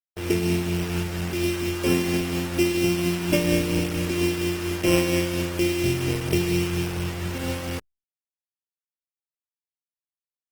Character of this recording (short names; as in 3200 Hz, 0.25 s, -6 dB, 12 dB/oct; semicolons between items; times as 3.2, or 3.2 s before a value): a buzz of ramps at a fixed pitch in blocks of 16 samples; tremolo triangle 4.3 Hz, depth 55%; a quantiser's noise floor 6-bit, dither none; Opus